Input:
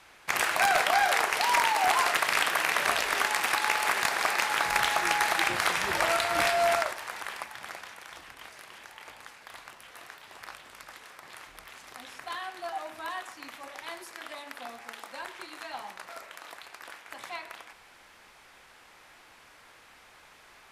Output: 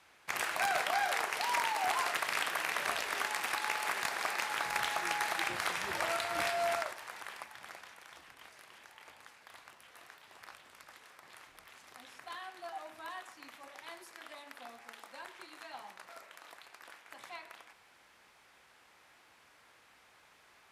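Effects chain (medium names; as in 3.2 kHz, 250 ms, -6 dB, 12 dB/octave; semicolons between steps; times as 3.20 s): high-pass 60 Hz; trim -8 dB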